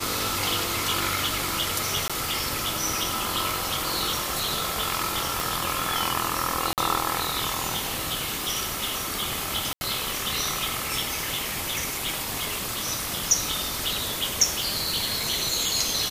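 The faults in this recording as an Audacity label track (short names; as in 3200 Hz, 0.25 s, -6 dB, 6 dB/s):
2.080000	2.100000	gap 16 ms
5.400000	5.400000	pop
6.730000	6.780000	gap 48 ms
9.730000	9.810000	gap 80 ms
14.630000	14.630000	pop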